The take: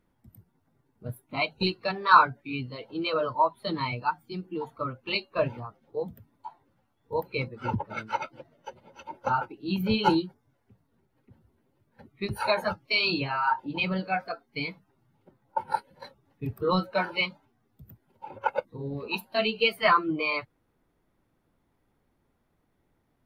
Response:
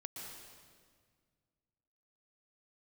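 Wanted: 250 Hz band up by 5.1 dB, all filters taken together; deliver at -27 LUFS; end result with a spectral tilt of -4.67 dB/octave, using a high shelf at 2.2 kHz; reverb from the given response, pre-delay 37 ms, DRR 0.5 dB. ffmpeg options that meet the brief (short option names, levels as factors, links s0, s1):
-filter_complex "[0:a]equalizer=f=250:t=o:g=7.5,highshelf=f=2200:g=-5.5,asplit=2[s0][s1];[1:a]atrim=start_sample=2205,adelay=37[s2];[s1][s2]afir=irnorm=-1:irlink=0,volume=1.26[s3];[s0][s3]amix=inputs=2:normalize=0,volume=0.794"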